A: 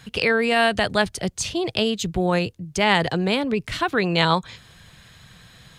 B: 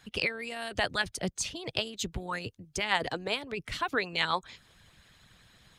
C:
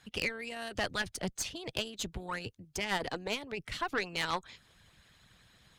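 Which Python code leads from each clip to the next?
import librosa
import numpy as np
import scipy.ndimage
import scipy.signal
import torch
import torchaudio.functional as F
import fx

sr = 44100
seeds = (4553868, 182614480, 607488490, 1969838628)

y1 = fx.hpss(x, sr, part='harmonic', gain_db=-15)
y1 = y1 * 10.0 ** (-5.5 / 20.0)
y2 = fx.tube_stage(y1, sr, drive_db=23.0, bias=0.6)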